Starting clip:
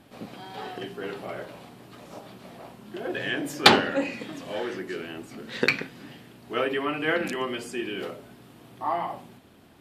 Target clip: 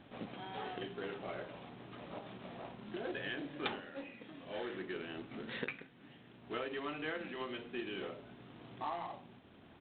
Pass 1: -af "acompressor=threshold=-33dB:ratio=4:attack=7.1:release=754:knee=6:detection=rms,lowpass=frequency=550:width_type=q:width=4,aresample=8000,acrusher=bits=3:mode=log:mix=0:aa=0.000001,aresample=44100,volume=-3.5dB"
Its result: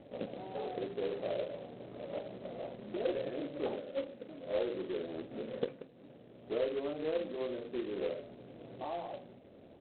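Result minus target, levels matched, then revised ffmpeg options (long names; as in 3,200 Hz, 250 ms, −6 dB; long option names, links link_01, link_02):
500 Hz band +4.0 dB
-af "acompressor=threshold=-33dB:ratio=4:attack=7.1:release=754:knee=6:detection=rms,aresample=8000,acrusher=bits=3:mode=log:mix=0:aa=0.000001,aresample=44100,volume=-3.5dB"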